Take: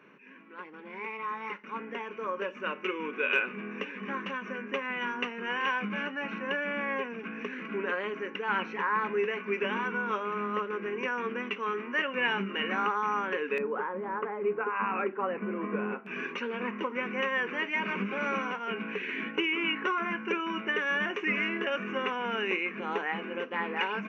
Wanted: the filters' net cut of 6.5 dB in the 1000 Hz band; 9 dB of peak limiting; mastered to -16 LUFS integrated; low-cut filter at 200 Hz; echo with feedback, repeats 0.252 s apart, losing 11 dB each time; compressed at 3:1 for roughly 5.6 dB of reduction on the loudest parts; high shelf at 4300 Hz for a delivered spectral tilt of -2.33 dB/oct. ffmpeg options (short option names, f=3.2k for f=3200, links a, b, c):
-af "highpass=200,equalizer=f=1k:t=o:g=-7.5,highshelf=f=4.3k:g=-7,acompressor=threshold=-34dB:ratio=3,alimiter=level_in=6dB:limit=-24dB:level=0:latency=1,volume=-6dB,aecho=1:1:252|504|756:0.282|0.0789|0.0221,volume=23dB"